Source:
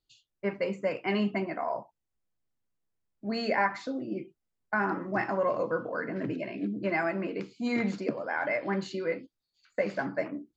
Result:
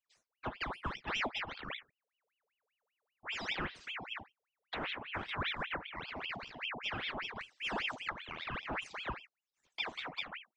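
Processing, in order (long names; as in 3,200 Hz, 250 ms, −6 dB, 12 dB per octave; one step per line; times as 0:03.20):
flanger swept by the level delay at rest 2.4 ms, full sweep at −26.5 dBFS
ring modulator whose carrier an LFO sweeps 1,700 Hz, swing 75%, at 5.1 Hz
level −5 dB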